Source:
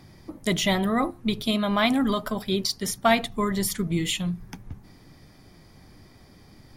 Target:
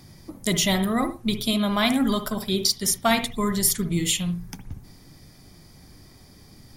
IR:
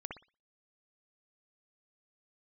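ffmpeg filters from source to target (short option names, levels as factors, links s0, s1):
-filter_complex "[0:a]bass=f=250:g=3,treble=f=4000:g=10,asplit=2[s0][s1];[1:a]atrim=start_sample=2205,atrim=end_sample=6615[s2];[s1][s2]afir=irnorm=-1:irlink=0,volume=0.891[s3];[s0][s3]amix=inputs=2:normalize=0,volume=0.562"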